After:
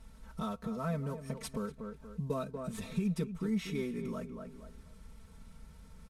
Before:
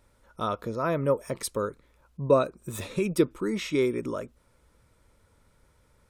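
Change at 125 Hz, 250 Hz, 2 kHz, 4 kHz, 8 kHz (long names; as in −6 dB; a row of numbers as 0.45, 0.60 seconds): −3.5, −5.5, −10.5, −9.5, −11.0 decibels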